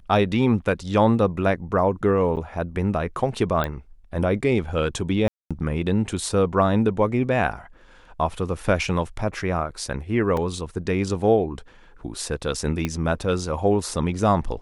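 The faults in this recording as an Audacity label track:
2.360000	2.370000	drop-out 8.9 ms
3.640000	3.640000	click −12 dBFS
5.280000	5.510000	drop-out 226 ms
10.370000	10.370000	drop-out 2.7 ms
12.850000	12.850000	click −11 dBFS

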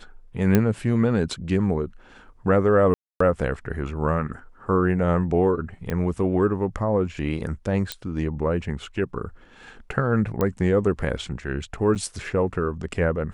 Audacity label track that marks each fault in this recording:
0.550000	0.550000	click −6 dBFS
2.940000	3.200000	drop-out 264 ms
5.900000	5.900000	click −15 dBFS
7.920000	7.920000	click −11 dBFS
10.410000	10.410000	click −11 dBFS
11.950000	11.960000	drop-out 6.9 ms

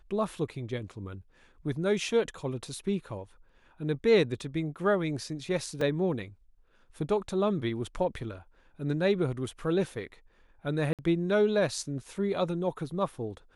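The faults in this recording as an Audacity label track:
5.810000	5.810000	drop-out 3.3 ms
10.930000	10.990000	drop-out 57 ms

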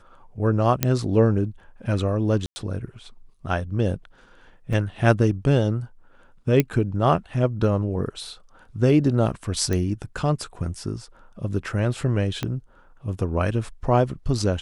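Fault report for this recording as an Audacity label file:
0.830000	0.830000	click −4 dBFS
2.460000	2.560000	drop-out 100 ms
4.730000	4.730000	drop-out 3.2 ms
6.600000	6.600000	click −6 dBFS
9.730000	9.730000	click −13 dBFS
12.430000	12.430000	click −12 dBFS

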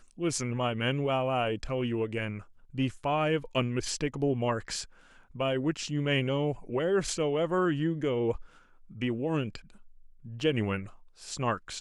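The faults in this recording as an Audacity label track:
10.400000	10.400000	drop-out 2.3 ms

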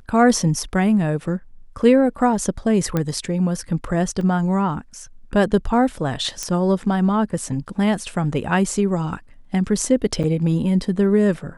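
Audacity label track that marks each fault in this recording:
2.970000	2.970000	click −9 dBFS
4.210000	4.210000	drop-out 2.2 ms
6.430000	6.430000	click −10 dBFS
10.230000	10.240000	drop-out 6.8 ms

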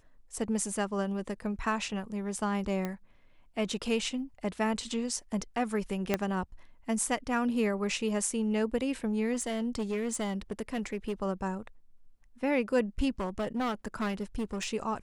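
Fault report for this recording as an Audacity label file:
2.850000	2.850000	click −20 dBFS
6.140000	6.140000	click −12 dBFS
9.330000	11.130000	clipping −27.5 dBFS
13.200000	14.680000	clipping −28 dBFS

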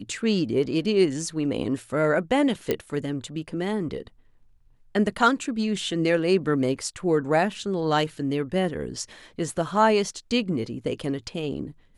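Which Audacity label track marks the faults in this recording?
2.710000	2.710000	click −10 dBFS

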